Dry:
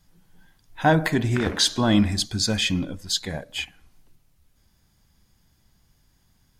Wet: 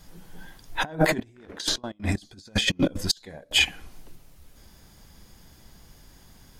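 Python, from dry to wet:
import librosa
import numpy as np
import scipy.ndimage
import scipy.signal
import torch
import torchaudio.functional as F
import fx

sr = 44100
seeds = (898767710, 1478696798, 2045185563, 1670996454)

y = fx.over_compress(x, sr, threshold_db=-28.0, ratio=-0.5)
y = fx.peak_eq(y, sr, hz=110.0, db=-3.5, octaves=1.2)
y = fx.step_gate(y, sr, bpm=188, pattern='.xx.....xx.x', floor_db=-24.0, edge_ms=4.5, at=(1.15, 3.59), fade=0.02)
y = fx.peak_eq(y, sr, hz=480.0, db=4.5, octaves=1.4)
y = y * 10.0 ** (5.5 / 20.0)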